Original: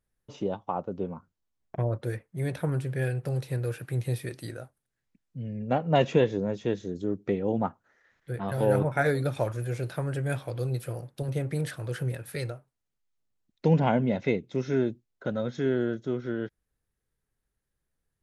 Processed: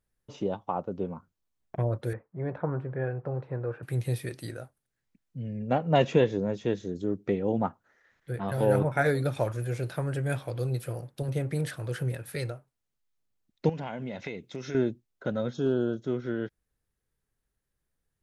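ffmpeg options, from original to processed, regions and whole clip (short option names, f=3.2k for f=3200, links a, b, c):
-filter_complex "[0:a]asettb=1/sr,asplit=3[a][b][c];[a]atrim=end=2.134[d];[b]atrim=start=2.13:end=3.83,asetpts=PTS-STARTPTS,afade=t=in:d=0.004:c=qsin,afade=t=out:st=1.696:d=0.004:c=qsin,lowpass=f=1.1k:t=q:w=1.6,lowshelf=f=130:g=-9[e];[c]atrim=start=3.826[f];[d][e]acrossfade=d=0.004:c1=hsin:c2=qsin[g];[g][f]acrossfade=d=0.004:c1=qsin:c2=hsin,asettb=1/sr,asplit=3[h][i][j];[h]atrim=end=13.694[k];[i]atrim=start=13.69:end=14.75,asetpts=PTS-STARTPTS,afade=t=in:d=0.004:c=qsin,afade=t=out:st=1.056:d=0.004:c=qsin,tiltshelf=f=850:g=-4.5,acompressor=threshold=-31dB:ratio=12:attack=3.2:release=140:knee=1:detection=peak[l];[j]atrim=start=14.746[m];[k][l]acrossfade=d=0.004:c1=hsin:c2=qsin[n];[n][m]acrossfade=d=0.004:c1=qsin:c2=hsin,asettb=1/sr,asplit=3[o][p][q];[o]atrim=end=15.534[r];[p]atrim=start=15.53:end=16.02,asetpts=PTS-STARTPTS,afade=t=in:d=0.004:c=qsin,afade=t=out:st=0.486:d=0.004:c=qsin,asoftclip=type=hard:threshold=-17.5dB,asuperstop=centerf=2000:order=4:qfactor=1.5[s];[q]atrim=start=16.016[t];[r][s]acrossfade=d=0.004:c1=hsin:c2=qsin[u];[u][t]acrossfade=d=0.004:c1=qsin:c2=hsin"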